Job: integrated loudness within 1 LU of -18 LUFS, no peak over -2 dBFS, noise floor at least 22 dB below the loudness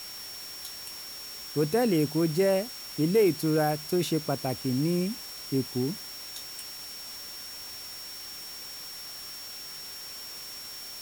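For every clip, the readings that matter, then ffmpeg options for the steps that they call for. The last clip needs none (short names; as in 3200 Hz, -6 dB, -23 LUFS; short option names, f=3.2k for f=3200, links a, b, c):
steady tone 5500 Hz; tone level -41 dBFS; noise floor -41 dBFS; noise floor target -53 dBFS; loudness -30.5 LUFS; peak -14.0 dBFS; loudness target -18.0 LUFS
-> -af "bandreject=f=5.5k:w=30"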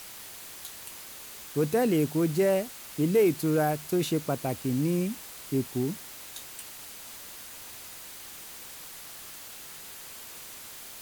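steady tone none; noise floor -44 dBFS; noise floor target -51 dBFS
-> -af "afftdn=nr=7:nf=-44"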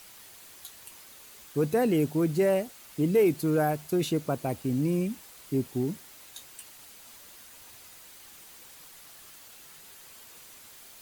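noise floor -51 dBFS; loudness -27.5 LUFS; peak -14.0 dBFS; loudness target -18.0 LUFS
-> -af "volume=9.5dB"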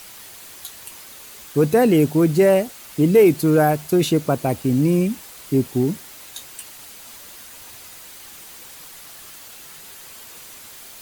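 loudness -18.0 LUFS; peak -4.5 dBFS; noise floor -41 dBFS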